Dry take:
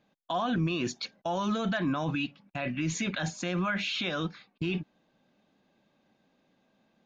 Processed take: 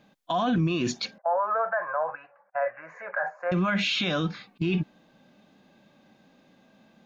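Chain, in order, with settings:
0:01.18–0:03.52: elliptic band-pass filter 540–1,700 Hz, stop band 40 dB
harmonic and percussive parts rebalanced harmonic +8 dB
brickwall limiter −22.5 dBFS, peak gain reduction 9 dB
level +4.5 dB

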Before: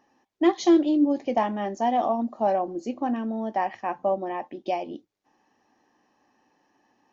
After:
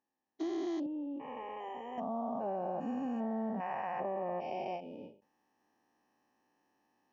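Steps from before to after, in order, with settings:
spectrum averaged block by block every 400 ms
speech leveller within 5 dB 2 s
noise reduction from a noise print of the clip's start 11 dB
downward compressor, threshold −31 dBFS, peak gain reduction 7.5 dB
0:00.86–0:01.98: phaser with its sweep stopped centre 1,000 Hz, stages 8
every ending faded ahead of time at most 150 dB per second
level −2.5 dB

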